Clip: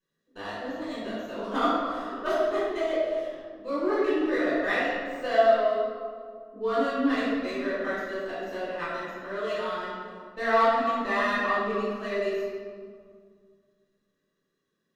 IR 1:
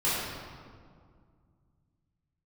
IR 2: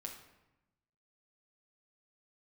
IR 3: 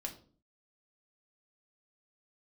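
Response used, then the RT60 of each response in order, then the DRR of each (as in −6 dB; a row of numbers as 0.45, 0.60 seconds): 1; 2.1, 0.95, 0.45 seconds; −12.0, 0.5, 1.0 decibels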